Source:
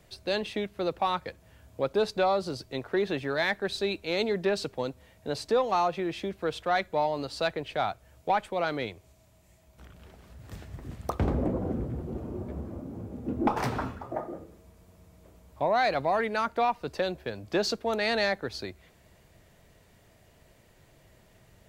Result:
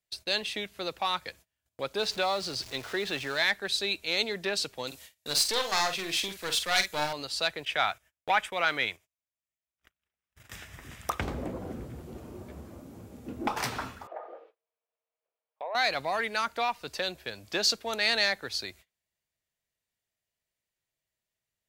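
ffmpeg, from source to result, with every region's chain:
ffmpeg -i in.wav -filter_complex "[0:a]asettb=1/sr,asplit=3[link_01][link_02][link_03];[link_01]atrim=end=1.994[link_04];[link_02]atrim=start=1.99:end=3.43,asetpts=PTS-STARTPTS,afade=type=in:duration=0.004:curve=qsin,afade=type=out:start_time=1.436:duration=0.004:curve=qsin,aeval=exprs='val(0)+0.5*0.01*sgn(val(0))':channel_layout=same,acrossover=split=7200[link_05][link_06];[link_06]acompressor=threshold=-58dB:ratio=4:attack=1:release=60[link_07];[link_05][link_07]amix=inputs=2:normalize=0[link_08];[link_03]atrim=start=3.426[link_09];[link_04][link_08]acrossfade=duration=0.004:curve1=hsin:curve2=qsin[link_10];[link_10][link_09]acrossfade=duration=0.004:curve1=qsin:curve2=hsin,asettb=1/sr,asplit=3[link_11][link_12][link_13];[link_11]atrim=end=4.874[link_14];[link_12]atrim=start=4.87:end=7.13,asetpts=PTS-STARTPTS,afade=type=in:duration=0.004:curve=qsin,afade=type=out:start_time=2.256:duration=0.004:curve=qsin,highshelf=frequency=2400:gain=11.5,aeval=exprs='clip(val(0),-1,0.0251)':channel_layout=same,asplit=2[link_15][link_16];[link_16]adelay=47,volume=-8dB[link_17];[link_15][link_17]amix=inputs=2:normalize=0,atrim=end_sample=99666[link_18];[link_13]atrim=start=7.126[link_19];[link_14][link_18]acrossfade=duration=0.004:curve1=hsin:curve2=qsin[link_20];[link_20][link_19]acrossfade=duration=0.004:curve1=qsin:curve2=hsin,asettb=1/sr,asplit=3[link_21][link_22][link_23];[link_21]atrim=end=7.654[link_24];[link_22]atrim=start=7.65:end=11.21,asetpts=PTS-STARTPTS,afade=type=in:duration=0.004:curve=qsin,afade=type=out:start_time=3.556:duration=0.004:curve=qsin,equalizer=frequency=1800:width_type=o:width=1.8:gain=7.5,bandreject=frequency=4300:width=6.1,agate=range=-12dB:threshold=-48dB:ratio=16:release=100:detection=peak[link_25];[link_23]atrim=start=11.206[link_26];[link_24][link_25]acrossfade=duration=0.004:curve1=hsin:curve2=qsin[link_27];[link_27][link_26]acrossfade=duration=0.004:curve1=qsin:curve2=hsin,asettb=1/sr,asplit=3[link_28][link_29][link_30];[link_28]atrim=end=14.074[link_31];[link_29]atrim=start=14.07:end=15.75,asetpts=PTS-STARTPTS,afade=type=in:duration=0.004:curve=qsin,afade=type=out:start_time=1.676:duration=0.004:curve=qsin,highpass=frequency=470:width=0.5412,highpass=frequency=470:width=1.3066,equalizer=frequency=470:width_type=q:width=4:gain=8,equalizer=frequency=770:width_type=q:width=4:gain=4,equalizer=frequency=2000:width_type=q:width=4:gain=-4,lowpass=frequency=2900:width=0.5412,lowpass=frequency=2900:width=1.3066,acompressor=threshold=-33dB:ratio=2:attack=3.2:release=140:knee=1:detection=peak[link_32];[link_30]atrim=start=15.746[link_33];[link_31][link_32]acrossfade=duration=0.004:curve1=hsin:curve2=qsin[link_34];[link_34][link_33]acrossfade=duration=0.004:curve1=qsin:curve2=hsin,agate=range=-29dB:threshold=-49dB:ratio=16:detection=peak,tiltshelf=frequency=1400:gain=-8.5" out.wav

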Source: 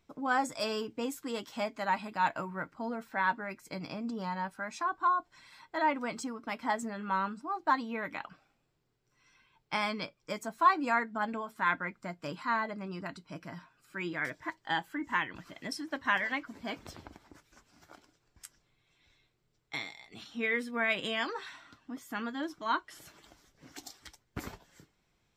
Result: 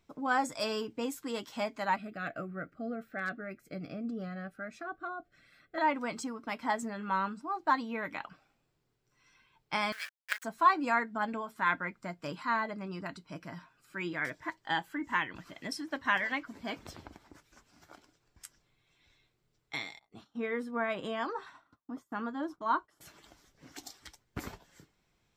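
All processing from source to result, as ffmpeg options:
ffmpeg -i in.wav -filter_complex "[0:a]asettb=1/sr,asplit=3[link_01][link_02][link_03];[link_01]atrim=end=1.964[link_04];[link_02]atrim=start=1.96:end=5.78,asetpts=PTS-STARTPTS,afade=type=in:duration=0.004:curve=qsin,afade=type=out:start_time=3.816:duration=0.004:curve=qsin,asuperstop=centerf=940:order=8:qfactor=2.3,equalizer=frequency=6400:width_type=o:width=2.7:gain=-12.5,aeval=exprs='0.0473*(abs(mod(val(0)/0.0473+3,4)-2)-1)':channel_layout=same[link_05];[link_03]atrim=start=5.776[link_06];[link_04][link_05]acrossfade=duration=0.004:curve1=hsin:curve2=qsin[link_07];[link_07][link_06]acrossfade=duration=0.004:curve1=qsin:curve2=hsin,asettb=1/sr,asplit=3[link_08][link_09][link_10];[link_08]atrim=end=9.924[link_11];[link_09]atrim=start=9.92:end=10.44,asetpts=PTS-STARTPTS,afade=type=in:duration=0.004:curve=qsin,afade=type=out:start_time=0.516:duration=0.004:curve=qsin,acrusher=bits=5:dc=4:mix=0:aa=0.000001,highpass=frequency=1600:width_type=q:width=7[link_12];[link_10]atrim=start=10.436[link_13];[link_11][link_12]acrossfade=duration=0.004:curve1=hsin:curve2=qsin[link_14];[link_14][link_13]acrossfade=duration=0.004:curve1=qsin:curve2=hsin,asettb=1/sr,asplit=3[link_15][link_16][link_17];[link_15]atrim=end=19.994[link_18];[link_16]atrim=start=19.99:end=23.01,asetpts=PTS-STARTPTS,afade=type=in:duration=0.004:curve=qsin,afade=type=out:start_time=3.016:duration=0.004:curve=qsin,highshelf=frequency=1600:width_type=q:width=1.5:gain=-8.5,agate=range=-33dB:threshold=-50dB:ratio=3:release=100:detection=peak[link_19];[link_17]atrim=start=23.006[link_20];[link_18][link_19]acrossfade=duration=0.004:curve1=hsin:curve2=qsin[link_21];[link_21][link_20]acrossfade=duration=0.004:curve1=qsin:curve2=hsin" out.wav

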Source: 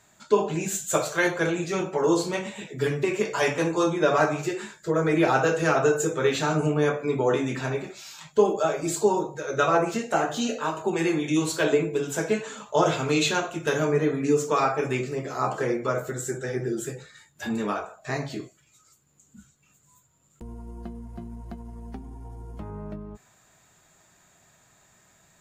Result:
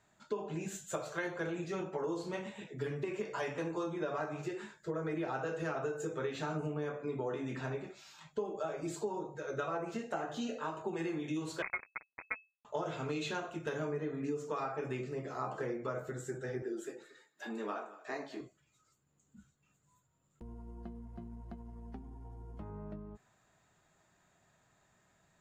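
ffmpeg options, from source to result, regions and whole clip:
ffmpeg -i in.wav -filter_complex "[0:a]asettb=1/sr,asplit=3[link_01][link_02][link_03];[link_01]atrim=end=11.624[link_04];[link_02]atrim=start=11.62:end=12.65,asetpts=PTS-STARTPTS,afade=type=in:duration=0.004:curve=qsin,afade=type=out:start_time=1.026:duration=0.004:curve=qsin,acrusher=bits=2:mix=0:aa=0.5,lowpass=frequency=2200:width_type=q:width=0.5098,lowpass=frequency=2200:width_type=q:width=0.6013,lowpass=frequency=2200:width_type=q:width=0.9,lowpass=frequency=2200:width_type=q:width=2.563,afreqshift=-2600[link_05];[link_03]atrim=start=12.646[link_06];[link_04][link_05]acrossfade=duration=0.004:curve1=hsin:curve2=qsin[link_07];[link_07][link_06]acrossfade=duration=0.004:curve1=qsin:curve2=hsin,asettb=1/sr,asplit=3[link_08][link_09][link_10];[link_08]atrim=end=16.624[link_11];[link_09]atrim=start=16.62:end=18.41,asetpts=PTS-STARTPTS,afade=type=in:duration=0.004:curve=qsin,afade=type=out:start_time=1.786:duration=0.004:curve=qsin,highpass=frequency=260:width=0.5412,highpass=frequency=260:width=1.3066,aecho=1:1:231:0.112,atrim=end_sample=78939[link_12];[link_10]atrim=start=18.406[link_13];[link_11][link_12]acrossfade=duration=0.004:curve1=hsin:curve2=qsin[link_14];[link_14][link_13]acrossfade=duration=0.004:curve1=qsin:curve2=hsin,lowpass=frequency=2900:poles=1,bandreject=frequency=2300:width=29,acompressor=threshold=-25dB:ratio=6,volume=-8.5dB" out.wav

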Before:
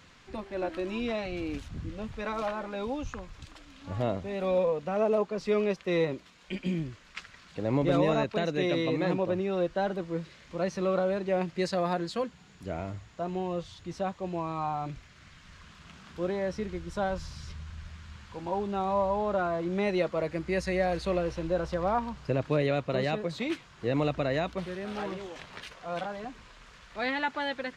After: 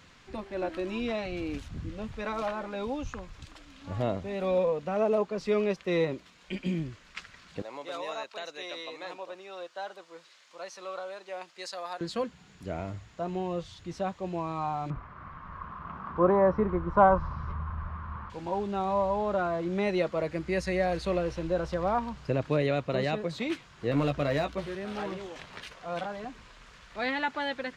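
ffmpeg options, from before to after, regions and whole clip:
ffmpeg -i in.wav -filter_complex "[0:a]asettb=1/sr,asplit=3[link_01][link_02][link_03];[link_01]atrim=end=7.624[link_04];[link_02]atrim=start=7.62:end=12.01,asetpts=PTS-STARTPTS,afade=type=in:duration=0.004:curve=qsin,afade=type=out:start_time=4.386:duration=0.004:curve=qsin,highpass=1000,equalizer=frequency=2000:width_type=o:width=1.3:gain=-6.5[link_05];[link_03]atrim=start=12.006[link_06];[link_04][link_05]acrossfade=duration=0.004:curve1=hsin:curve2=qsin[link_07];[link_07][link_06]acrossfade=duration=0.004:curve1=qsin:curve2=hsin,asettb=1/sr,asplit=3[link_08][link_09][link_10];[link_08]atrim=end=14.904[link_11];[link_09]atrim=start=14.9:end=18.3,asetpts=PTS-STARTPTS,afade=type=in:duration=0.004:curve=qsin,afade=type=out:start_time=3.396:duration=0.004:curve=qsin,lowpass=frequency=1100:width_type=q:width=4.9,acontrast=65[link_12];[link_10]atrim=start=18.296[link_13];[link_11][link_12]acrossfade=duration=0.004:curve1=hsin:curve2=qsin[link_14];[link_14][link_13]acrossfade=duration=0.004:curve1=qsin:curve2=hsin,asettb=1/sr,asplit=3[link_15][link_16][link_17];[link_15]atrim=end=23.914[link_18];[link_16]atrim=start=23.91:end=24.75,asetpts=PTS-STARTPTS,afade=type=in:duration=0.004:curve=qsin,afade=type=out:start_time=0.836:duration=0.004:curve=qsin,asoftclip=type=hard:threshold=-22dB,asplit=2[link_19][link_20];[link_20]adelay=14,volume=-6.5dB[link_21];[link_19][link_21]amix=inputs=2:normalize=0,atrim=end_sample=37044[link_22];[link_17]atrim=start=24.746[link_23];[link_18][link_22]acrossfade=duration=0.004:curve1=hsin:curve2=qsin[link_24];[link_24][link_23]acrossfade=duration=0.004:curve1=qsin:curve2=hsin" out.wav

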